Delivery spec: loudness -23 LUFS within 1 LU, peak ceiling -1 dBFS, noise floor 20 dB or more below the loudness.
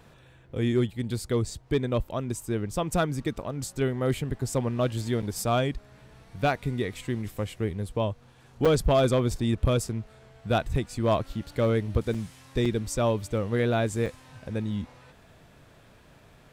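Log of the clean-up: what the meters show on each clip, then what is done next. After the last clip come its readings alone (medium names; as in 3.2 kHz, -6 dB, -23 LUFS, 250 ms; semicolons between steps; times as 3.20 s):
clipped samples 0.4%; clipping level -15.0 dBFS; dropouts 5; longest dropout 5.4 ms; loudness -28.0 LUFS; peak level -15.0 dBFS; loudness target -23.0 LUFS
-> clip repair -15 dBFS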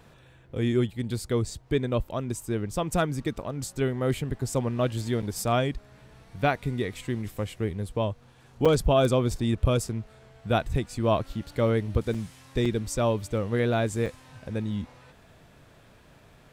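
clipped samples 0.0%; dropouts 5; longest dropout 5.4 ms
-> interpolate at 5.22/8.65/12.14/12.65/14.06 s, 5.4 ms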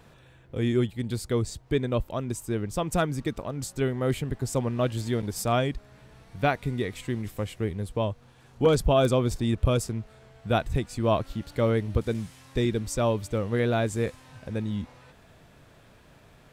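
dropouts 0; loudness -28.0 LUFS; peak level -9.0 dBFS; loudness target -23.0 LUFS
-> trim +5 dB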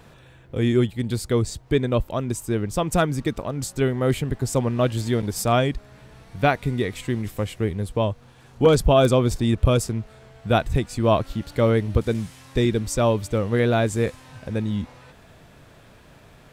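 loudness -23.0 LUFS; peak level -4.0 dBFS; noise floor -50 dBFS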